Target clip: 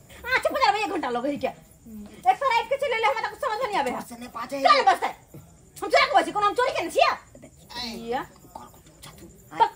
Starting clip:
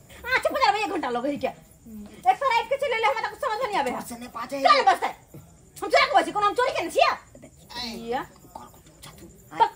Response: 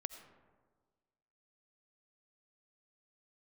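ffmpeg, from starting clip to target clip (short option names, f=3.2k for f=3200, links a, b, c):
-filter_complex "[0:a]asettb=1/sr,asplit=3[a][b][c];[a]atrim=end=3.514[d];[b]atrim=start=3.51:end=4.18,asetpts=PTS-STARTPTS,afade=t=in:d=0.004:c=qsin,afade=t=out:st=0.666:d=0.004:c=qsin,agate=range=-33dB:threshold=-31dB:ratio=3:detection=peak[e];[c]atrim=start=4.176[f];[d][e]acrossfade=d=0.004:c1=hsin:c2=qsin[g];[g][f]acrossfade=d=0.004:c1=qsin:c2=hsin"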